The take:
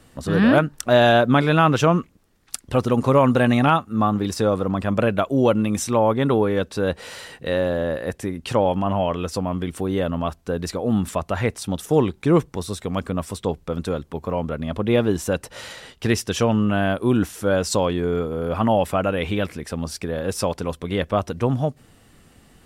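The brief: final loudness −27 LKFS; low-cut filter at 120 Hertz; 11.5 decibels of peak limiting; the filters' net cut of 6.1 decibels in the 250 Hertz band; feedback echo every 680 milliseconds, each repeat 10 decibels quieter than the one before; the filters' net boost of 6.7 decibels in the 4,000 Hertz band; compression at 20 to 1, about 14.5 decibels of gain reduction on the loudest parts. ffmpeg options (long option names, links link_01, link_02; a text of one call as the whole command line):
ffmpeg -i in.wav -af "highpass=120,equalizer=frequency=250:width_type=o:gain=-7.5,equalizer=frequency=4000:width_type=o:gain=8.5,acompressor=threshold=-25dB:ratio=20,alimiter=limit=-18dB:level=0:latency=1,aecho=1:1:680|1360|2040|2720:0.316|0.101|0.0324|0.0104,volume=4dB" out.wav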